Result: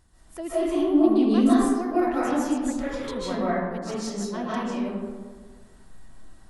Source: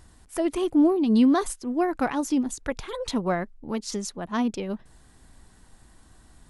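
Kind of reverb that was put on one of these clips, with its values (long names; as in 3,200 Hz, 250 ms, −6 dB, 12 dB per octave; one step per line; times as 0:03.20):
comb and all-pass reverb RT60 1.5 s, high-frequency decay 0.45×, pre-delay 110 ms, DRR −10 dB
level −9.5 dB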